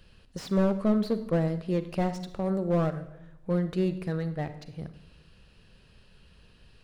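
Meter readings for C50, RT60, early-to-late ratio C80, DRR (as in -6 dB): 12.0 dB, 0.85 s, 15.0 dB, 11.0 dB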